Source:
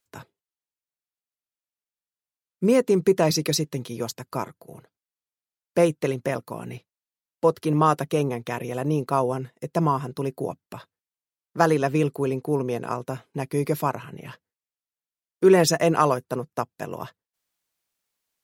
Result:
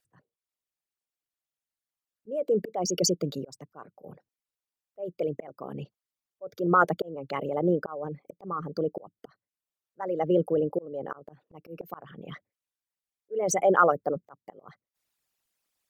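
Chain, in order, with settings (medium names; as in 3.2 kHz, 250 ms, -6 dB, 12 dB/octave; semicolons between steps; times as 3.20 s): resonances exaggerated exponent 2; slow attack 492 ms; tape speed +16%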